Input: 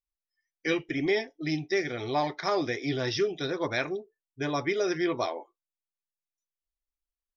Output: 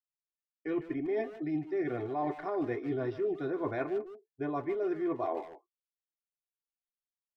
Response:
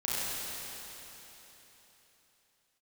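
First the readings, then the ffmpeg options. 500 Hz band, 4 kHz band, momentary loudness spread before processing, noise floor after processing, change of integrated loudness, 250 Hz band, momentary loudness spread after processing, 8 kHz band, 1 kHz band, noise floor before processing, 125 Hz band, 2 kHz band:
-3.5 dB, under -20 dB, 6 LU, under -85 dBFS, -4.5 dB, -2.5 dB, 4 LU, no reading, -5.0 dB, under -85 dBFS, -6.0 dB, -12.5 dB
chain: -filter_complex "[0:a]lowpass=1100,agate=range=0.0224:threshold=0.00794:ratio=3:detection=peak,aecho=1:1:2.8:0.46,areverse,acompressor=threshold=0.02:ratio=8,areverse,asplit=2[s0][s1];[s1]adelay=150,highpass=300,lowpass=3400,asoftclip=type=hard:threshold=0.0141,volume=0.282[s2];[s0][s2]amix=inputs=2:normalize=0,volume=1.58"

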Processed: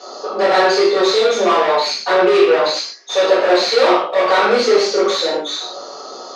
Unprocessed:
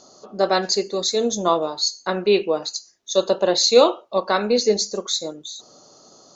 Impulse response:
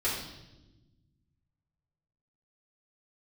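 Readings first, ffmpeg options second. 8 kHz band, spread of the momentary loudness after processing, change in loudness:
no reading, 11 LU, +5.5 dB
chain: -filter_complex "[0:a]flanger=delay=17:depth=2.6:speed=1.3,asplit=2[s0][s1];[s1]highpass=f=720:p=1,volume=56.2,asoftclip=type=tanh:threshold=0.631[s2];[s0][s2]amix=inputs=2:normalize=0,lowpass=f=1900:p=1,volume=0.501,highpass=350,lowpass=6100[s3];[1:a]atrim=start_sample=2205,atrim=end_sample=6615[s4];[s3][s4]afir=irnorm=-1:irlink=0,volume=0.398"

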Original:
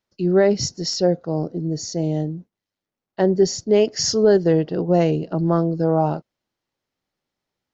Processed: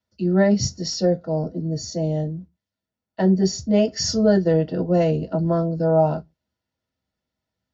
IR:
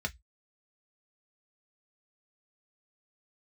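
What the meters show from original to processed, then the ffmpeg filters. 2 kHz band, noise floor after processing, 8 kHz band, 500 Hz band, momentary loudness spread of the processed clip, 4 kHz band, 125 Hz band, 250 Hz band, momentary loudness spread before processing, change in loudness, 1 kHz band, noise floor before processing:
-0.5 dB, under -85 dBFS, no reading, -2.5 dB, 9 LU, -2.5 dB, +0.5 dB, +0.5 dB, 9 LU, -1.0 dB, -2.0 dB, under -85 dBFS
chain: -filter_complex "[0:a]equalizer=f=2300:t=o:w=0.6:g=-5[s0];[1:a]atrim=start_sample=2205,atrim=end_sample=6174[s1];[s0][s1]afir=irnorm=-1:irlink=0,volume=0.631"

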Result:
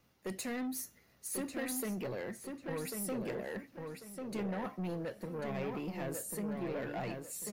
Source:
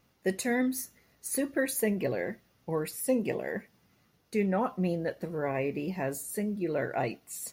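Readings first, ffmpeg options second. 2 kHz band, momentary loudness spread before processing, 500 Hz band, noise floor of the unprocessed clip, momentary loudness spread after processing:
-8.5 dB, 9 LU, -8.5 dB, -69 dBFS, 7 LU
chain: -filter_complex "[0:a]acrossover=split=190|3000[s0][s1][s2];[s1]acompressor=threshold=0.0282:ratio=2.5[s3];[s0][s3][s2]amix=inputs=3:normalize=0,asoftclip=type=tanh:threshold=0.0266,asplit=2[s4][s5];[s5]adelay=1094,lowpass=f=4000:p=1,volume=0.596,asplit=2[s6][s7];[s7]adelay=1094,lowpass=f=4000:p=1,volume=0.32,asplit=2[s8][s9];[s9]adelay=1094,lowpass=f=4000:p=1,volume=0.32,asplit=2[s10][s11];[s11]adelay=1094,lowpass=f=4000:p=1,volume=0.32[s12];[s6][s8][s10][s12]amix=inputs=4:normalize=0[s13];[s4][s13]amix=inputs=2:normalize=0,volume=0.75"

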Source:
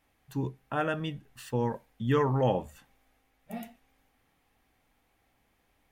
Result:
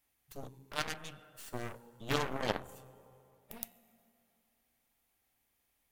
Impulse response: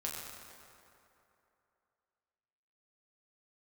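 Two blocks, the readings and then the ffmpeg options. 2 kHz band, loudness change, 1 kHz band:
-2.0 dB, -9.0 dB, -7.5 dB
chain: -filter_complex "[0:a]crystalizer=i=4:c=0,asplit=2[s0][s1];[1:a]atrim=start_sample=2205[s2];[s1][s2]afir=irnorm=-1:irlink=0,volume=0.376[s3];[s0][s3]amix=inputs=2:normalize=0,aeval=exprs='0.376*(cos(1*acos(clip(val(0)/0.376,-1,1)))-cos(1*PI/2))+0.0668*(cos(3*acos(clip(val(0)/0.376,-1,1)))-cos(3*PI/2))+0.0596*(cos(6*acos(clip(val(0)/0.376,-1,1)))-cos(6*PI/2))+0.0376*(cos(7*acos(clip(val(0)/0.376,-1,1)))-cos(7*PI/2))+0.0531*(cos(8*acos(clip(val(0)/0.376,-1,1)))-cos(8*PI/2))':c=same,volume=0.668"

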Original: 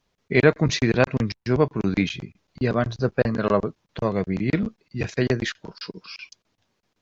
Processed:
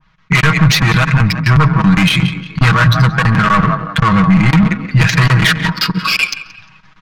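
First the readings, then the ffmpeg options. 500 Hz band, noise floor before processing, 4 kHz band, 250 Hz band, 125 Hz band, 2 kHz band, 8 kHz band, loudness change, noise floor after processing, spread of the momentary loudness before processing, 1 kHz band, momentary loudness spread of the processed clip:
-3.0 dB, -74 dBFS, +17.0 dB, +11.0 dB, +16.0 dB, +15.5 dB, no reading, +12.0 dB, -50 dBFS, 17 LU, +16.5 dB, 5 LU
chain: -filter_complex "[0:a]asplit=2[s0][s1];[s1]asplit=3[s2][s3][s4];[s2]adelay=176,afreqshift=45,volume=0.158[s5];[s3]adelay=352,afreqshift=90,volume=0.0507[s6];[s4]adelay=528,afreqshift=135,volume=0.0162[s7];[s5][s6][s7]amix=inputs=3:normalize=0[s8];[s0][s8]amix=inputs=2:normalize=0,dynaudnorm=f=220:g=5:m=2.82,asoftclip=type=tanh:threshold=0.112,firequalizer=gain_entry='entry(170,0);entry(320,-16);entry(490,-18);entry(1100,5)':delay=0.05:min_phase=1,asoftclip=type=hard:threshold=0.112,aecho=1:1:6.3:0.75,asplit=2[s9][s10];[s10]adelay=135,lowpass=f=4600:p=1,volume=0.158,asplit=2[s11][s12];[s12]adelay=135,lowpass=f=4600:p=1,volume=0.32,asplit=2[s13][s14];[s14]adelay=135,lowpass=f=4600:p=1,volume=0.32[s15];[s11][s13][s15]amix=inputs=3:normalize=0[s16];[s9][s16]amix=inputs=2:normalize=0,adynamicsmooth=sensitivity=2:basefreq=2200,alimiter=level_in=8.91:limit=0.891:release=50:level=0:latency=1,adynamicequalizer=threshold=0.0708:dfrequency=1800:dqfactor=0.7:tfrequency=1800:tqfactor=0.7:attack=5:release=100:ratio=0.375:range=2:mode=cutabove:tftype=highshelf,volume=0.891"

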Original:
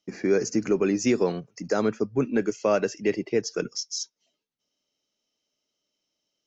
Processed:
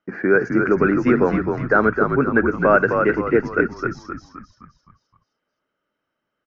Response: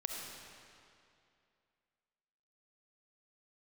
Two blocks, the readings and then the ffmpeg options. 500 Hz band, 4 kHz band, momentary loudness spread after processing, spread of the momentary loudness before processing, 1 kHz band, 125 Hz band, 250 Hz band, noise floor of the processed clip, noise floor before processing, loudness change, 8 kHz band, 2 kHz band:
+6.5 dB, under -10 dB, 11 LU, 8 LU, +14.0 dB, +9.5 dB, +7.0 dB, -79 dBFS, -83 dBFS, +7.5 dB, no reading, +16.0 dB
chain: -filter_complex "[0:a]lowpass=f=1500:t=q:w=5.3,asplit=7[s0][s1][s2][s3][s4][s5][s6];[s1]adelay=260,afreqshift=-57,volume=0.562[s7];[s2]adelay=520,afreqshift=-114,volume=0.254[s8];[s3]adelay=780,afreqshift=-171,volume=0.114[s9];[s4]adelay=1040,afreqshift=-228,volume=0.0513[s10];[s5]adelay=1300,afreqshift=-285,volume=0.0232[s11];[s6]adelay=1560,afreqshift=-342,volume=0.0104[s12];[s0][s7][s8][s9][s10][s11][s12]amix=inputs=7:normalize=0,volume=1.68"

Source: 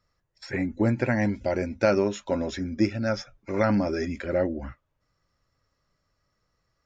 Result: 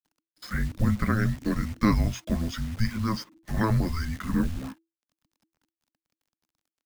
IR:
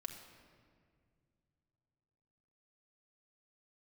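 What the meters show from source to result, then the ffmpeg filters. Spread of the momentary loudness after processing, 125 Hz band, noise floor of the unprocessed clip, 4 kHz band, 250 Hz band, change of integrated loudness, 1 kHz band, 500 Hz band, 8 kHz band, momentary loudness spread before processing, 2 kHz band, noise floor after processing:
10 LU, +4.5 dB, -76 dBFS, +1.0 dB, -1.0 dB, -1.5 dB, -1.0 dB, -12.0 dB, no reading, 10 LU, -2.5 dB, under -85 dBFS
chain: -af "acrusher=bits=8:dc=4:mix=0:aa=0.000001,afreqshift=-330"

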